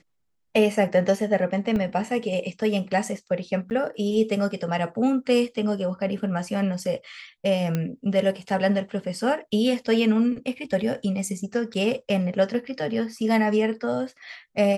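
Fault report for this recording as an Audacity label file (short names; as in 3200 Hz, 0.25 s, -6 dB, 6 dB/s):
1.760000	1.760000	gap 2.1 ms
3.700000	3.710000	gap 9.8 ms
7.750000	7.750000	pop -13 dBFS
11.740000	11.750000	gap 5.1 ms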